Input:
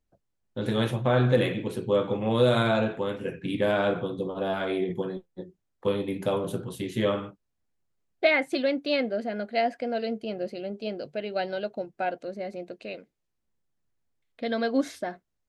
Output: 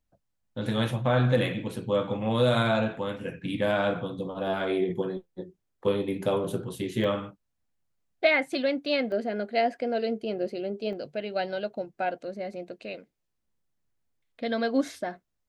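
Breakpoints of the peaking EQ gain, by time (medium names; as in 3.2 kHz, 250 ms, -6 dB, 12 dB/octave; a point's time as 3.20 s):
peaking EQ 390 Hz 0.42 oct
-8.5 dB
from 4.47 s +2 dB
from 7.04 s -6 dB
from 9.12 s +5.5 dB
from 10.93 s -1.5 dB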